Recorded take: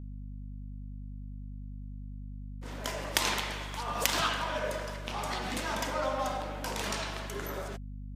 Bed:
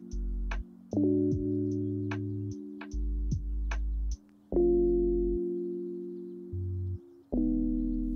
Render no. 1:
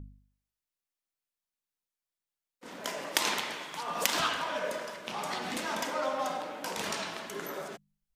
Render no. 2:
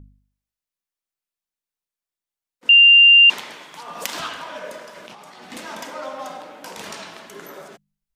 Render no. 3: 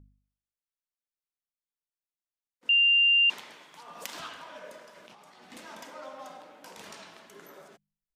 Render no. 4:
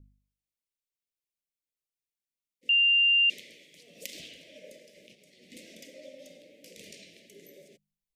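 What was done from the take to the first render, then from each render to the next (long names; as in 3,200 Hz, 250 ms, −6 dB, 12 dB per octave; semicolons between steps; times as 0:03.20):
hum removal 50 Hz, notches 5
0:02.69–0:03.30: beep over 2,790 Hz −6.5 dBFS; 0:04.96–0:05.52: compressor whose output falls as the input rises −42 dBFS
level −11.5 dB
elliptic band-stop filter 560–2,100 Hz, stop band 40 dB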